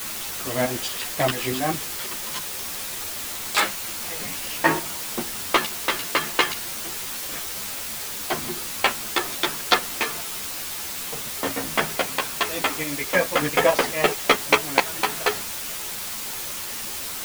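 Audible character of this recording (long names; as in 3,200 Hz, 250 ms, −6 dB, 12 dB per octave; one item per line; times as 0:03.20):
tremolo saw up 4.6 Hz, depth 70%
a quantiser's noise floor 6 bits, dither triangular
a shimmering, thickened sound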